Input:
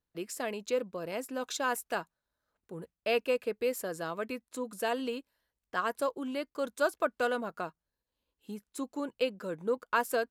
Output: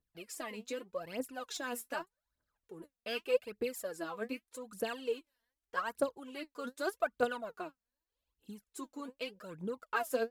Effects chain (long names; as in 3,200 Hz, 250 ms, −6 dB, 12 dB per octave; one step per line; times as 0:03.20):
phase shifter 0.83 Hz, delay 4.5 ms, feedback 76%
level −8 dB